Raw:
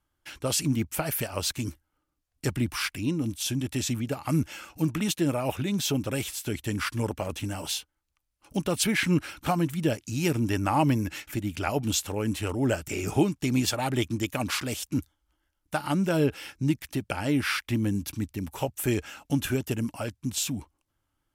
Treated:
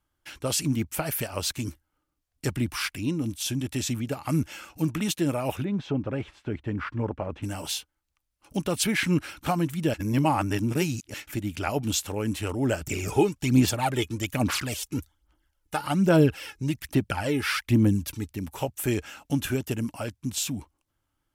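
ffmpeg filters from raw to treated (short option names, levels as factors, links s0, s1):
-filter_complex "[0:a]asplit=3[s0][s1][s2];[s0]afade=t=out:st=5.63:d=0.02[s3];[s1]lowpass=1600,afade=t=in:st=5.63:d=0.02,afade=t=out:st=7.42:d=0.02[s4];[s2]afade=t=in:st=7.42:d=0.02[s5];[s3][s4][s5]amix=inputs=3:normalize=0,asettb=1/sr,asplit=3[s6][s7][s8];[s6]atrim=end=12.814[s9];[s7]atrim=start=12.81:end=18.29,asetpts=PTS-STARTPTS,afade=t=in:d=0.004:c=qsin,afade=t=out:st=5.476:d=0.004:c=qsin,aphaser=in_gain=1:out_gain=1:delay=2.4:decay=0.55:speed=1.2:type=sinusoidal[s10];[s8]atrim=start=18.286[s11];[s9][s10]acrossfade=d=0.004:c1=hsin:c2=qsin[s12];[s12][s11]acrossfade=d=0.004:c1=qsin:c2=hsin,asplit=3[s13][s14][s15];[s13]atrim=end=9.942[s16];[s14]atrim=start=9.938:end=11.142,asetpts=PTS-STARTPTS,areverse[s17];[s15]atrim=start=11.138[s18];[s16][s17]acrossfade=d=0.004:c1=hsin:c2=hsin[s19];[s19][s18]acrossfade=d=0.004:c1=hsin:c2=hsin"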